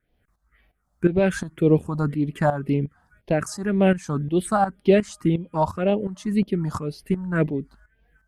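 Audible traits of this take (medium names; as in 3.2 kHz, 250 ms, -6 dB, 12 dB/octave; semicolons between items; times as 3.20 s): phasing stages 4, 1.9 Hz, lowest notch 390–1400 Hz; tremolo saw up 2.8 Hz, depth 75%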